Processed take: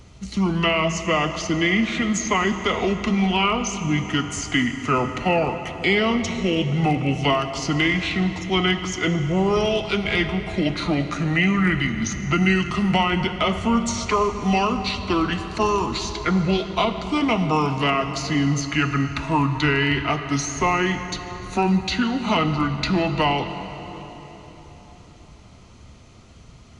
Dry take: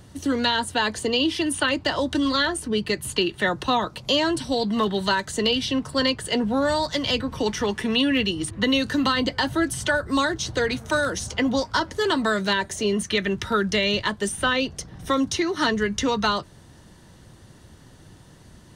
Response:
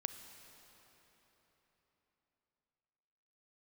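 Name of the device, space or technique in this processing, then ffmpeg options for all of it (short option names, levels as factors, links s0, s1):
slowed and reverbed: -filter_complex "[0:a]asetrate=30870,aresample=44100[s0];[1:a]atrim=start_sample=2205[s1];[s0][s1]afir=irnorm=-1:irlink=0,volume=1.41"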